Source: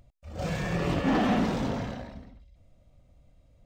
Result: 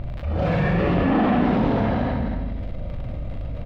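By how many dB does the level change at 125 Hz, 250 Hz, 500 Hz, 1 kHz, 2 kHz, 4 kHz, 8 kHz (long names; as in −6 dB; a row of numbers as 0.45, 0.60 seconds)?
+10.0 dB, +8.0 dB, +8.5 dB, +7.5 dB, +6.0 dB, +1.0 dB, below −10 dB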